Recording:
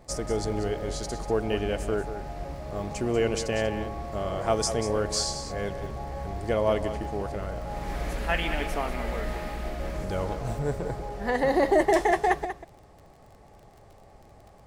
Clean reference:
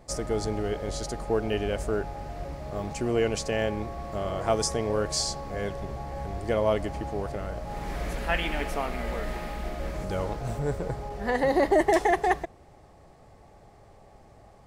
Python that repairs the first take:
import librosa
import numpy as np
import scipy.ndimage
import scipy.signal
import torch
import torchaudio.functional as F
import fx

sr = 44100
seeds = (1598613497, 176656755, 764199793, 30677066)

y = fx.fix_declick_ar(x, sr, threshold=6.5)
y = fx.fix_echo_inverse(y, sr, delay_ms=190, level_db=-10.5)